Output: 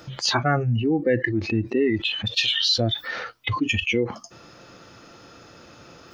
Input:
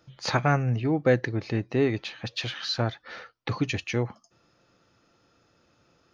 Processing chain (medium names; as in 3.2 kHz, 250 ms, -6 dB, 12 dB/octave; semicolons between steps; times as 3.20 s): 2.37–3.11 s: treble shelf 2.4 kHz +7 dB; spectral noise reduction 22 dB; bass shelf 150 Hz -3.5 dB; level flattener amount 70%